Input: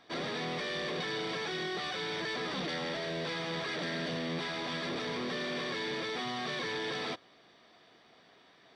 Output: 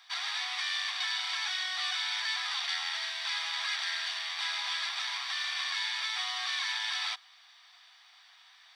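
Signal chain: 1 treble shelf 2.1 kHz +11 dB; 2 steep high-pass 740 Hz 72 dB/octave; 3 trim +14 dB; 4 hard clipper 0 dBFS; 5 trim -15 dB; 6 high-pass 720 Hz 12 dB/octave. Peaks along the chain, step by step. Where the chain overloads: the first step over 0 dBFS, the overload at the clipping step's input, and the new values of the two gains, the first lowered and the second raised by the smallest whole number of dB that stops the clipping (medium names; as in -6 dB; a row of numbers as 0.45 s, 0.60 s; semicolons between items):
-18.5 dBFS, -19.0 dBFS, -5.0 dBFS, -5.0 dBFS, -20.0 dBFS, -20.0 dBFS; nothing clips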